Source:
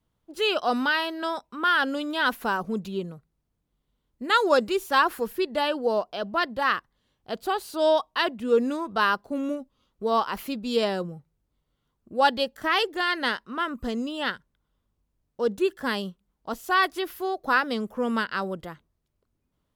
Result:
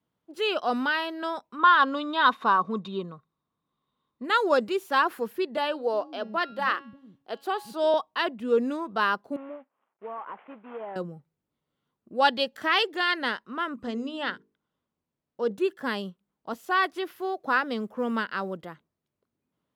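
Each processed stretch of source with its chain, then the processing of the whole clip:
1.59–4.25 s: low-pass 5.7 kHz + small resonant body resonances 1.1/3.7 kHz, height 17 dB, ringing for 25 ms
5.57–7.94 s: de-hum 277.1 Hz, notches 31 + bands offset in time highs, lows 360 ms, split 240 Hz
9.36–10.96 s: CVSD coder 16 kbps + band-pass filter 890 Hz, Q 1.4 + compression, threshold -31 dBFS
12.20–13.14 s: peaking EQ 3.8 kHz +5.5 dB 2.2 oct + upward compressor, threshold -33 dBFS
13.75–15.51 s: low-pass 8.2 kHz + hum notches 50/100/150/200/250/300/350/400/450 Hz
16.65–18.57 s: treble shelf 11 kHz -6 dB + companded quantiser 8-bit
whole clip: high-pass 170 Hz 12 dB/octave; tone controls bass +2 dB, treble -6 dB; trim -2 dB

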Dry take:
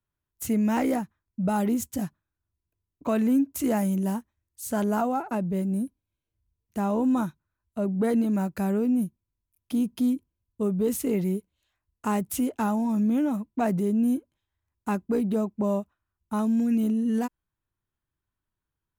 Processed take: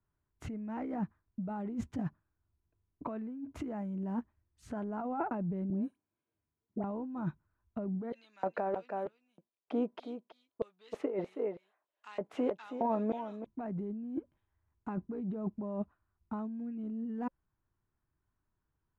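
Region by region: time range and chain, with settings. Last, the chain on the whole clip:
5.70–6.84 s: high-pass 220 Hz + compression 2:1, threshold -40 dBFS + phase dispersion highs, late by 88 ms, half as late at 1.1 kHz
8.12–13.46 s: LFO high-pass square 1.6 Hz 550–4000 Hz + treble shelf 5.5 kHz -10.5 dB + delay 324 ms -10.5 dB
whole clip: low-pass 1.6 kHz 12 dB/octave; band-stop 540 Hz, Q 12; compressor with a negative ratio -33 dBFS, ratio -1; trim -3 dB

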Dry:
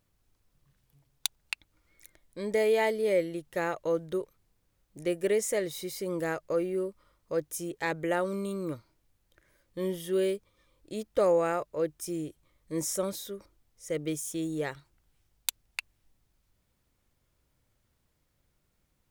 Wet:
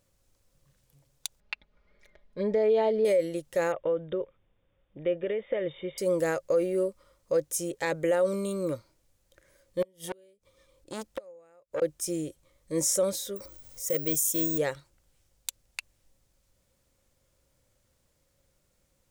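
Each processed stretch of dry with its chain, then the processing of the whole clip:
1.40–3.05 s: comb 4.8 ms, depth 84% + compression 1.5:1, threshold -27 dBFS + distance through air 310 m
3.72–5.98 s: compression, threshold -30 dBFS + brick-wall FIR low-pass 3.7 kHz
9.82–11.82 s: inverted gate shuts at -23 dBFS, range -35 dB + transformer saturation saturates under 1.2 kHz
13.36–14.58 s: treble shelf 9 kHz +10.5 dB + careless resampling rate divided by 2×, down filtered, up zero stuff + upward compressor, threshold -37 dBFS
whole clip: peaking EQ 540 Hz +11.5 dB 0.23 oct; peak limiter -19 dBFS; peaking EQ 7.3 kHz +6.5 dB 1.3 oct; trim +1.5 dB

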